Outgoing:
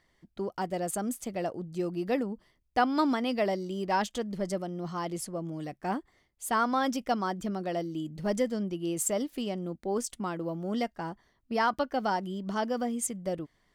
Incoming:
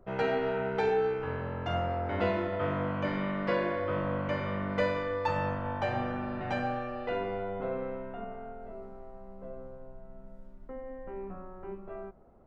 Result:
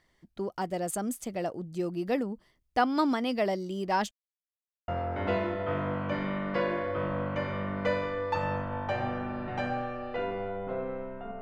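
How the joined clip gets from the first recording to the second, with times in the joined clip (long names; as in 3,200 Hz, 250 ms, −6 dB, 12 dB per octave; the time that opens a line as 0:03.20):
outgoing
0:04.11–0:04.88: silence
0:04.88: continue with incoming from 0:01.81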